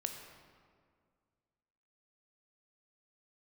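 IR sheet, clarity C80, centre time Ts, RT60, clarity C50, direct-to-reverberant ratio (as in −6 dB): 6.5 dB, 42 ms, 2.0 s, 5.5 dB, 4.0 dB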